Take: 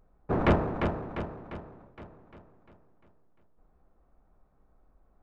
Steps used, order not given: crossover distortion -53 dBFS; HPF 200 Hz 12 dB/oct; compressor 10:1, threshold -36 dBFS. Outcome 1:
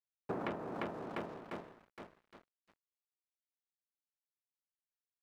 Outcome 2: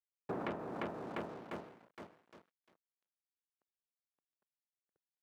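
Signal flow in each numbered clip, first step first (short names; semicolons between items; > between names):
HPF > crossover distortion > compressor; crossover distortion > compressor > HPF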